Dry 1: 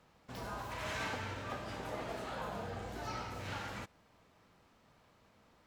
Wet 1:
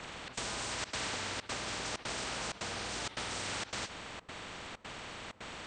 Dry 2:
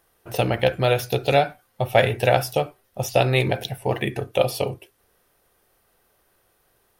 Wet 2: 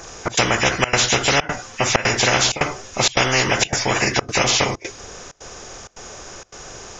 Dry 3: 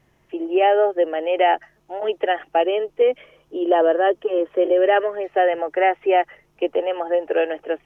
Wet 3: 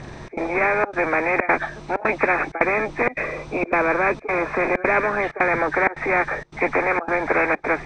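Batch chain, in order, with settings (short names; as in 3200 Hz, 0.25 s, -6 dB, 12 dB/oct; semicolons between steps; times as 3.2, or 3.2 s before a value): nonlinear frequency compression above 1500 Hz 1.5:1; step gate "xxx.xxxxx.xx" 161 bpm -24 dB; spectral compressor 4:1; gain +3.5 dB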